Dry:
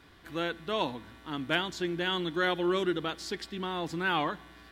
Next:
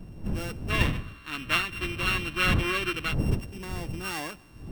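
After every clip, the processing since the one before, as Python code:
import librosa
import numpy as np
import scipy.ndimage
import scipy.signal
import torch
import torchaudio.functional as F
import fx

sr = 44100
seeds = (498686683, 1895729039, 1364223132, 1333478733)

y = np.r_[np.sort(x[:len(x) // 16 * 16].reshape(-1, 16), axis=1).ravel(), x[len(x) // 16 * 16:]]
y = fx.dmg_wind(y, sr, seeds[0], corner_hz=150.0, level_db=-27.0)
y = fx.spec_box(y, sr, start_s=0.7, length_s=2.44, low_hz=1000.0, high_hz=4400.0, gain_db=11)
y = y * librosa.db_to_amplitude(-5.0)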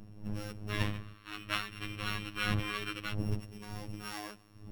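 y = fx.robotise(x, sr, hz=104.0)
y = y * librosa.db_to_amplitude(-5.5)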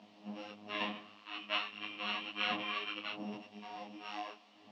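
y = fx.quant_dither(x, sr, seeds[1], bits=10, dither='triangular')
y = fx.cabinet(y, sr, low_hz=230.0, low_slope=24, high_hz=4400.0, hz=(250.0, 360.0, 700.0, 990.0, 1500.0, 2900.0), db=(5, -9, 10, 5, -7, 6))
y = fx.detune_double(y, sr, cents=29)
y = y * librosa.db_to_amplitude(1.5)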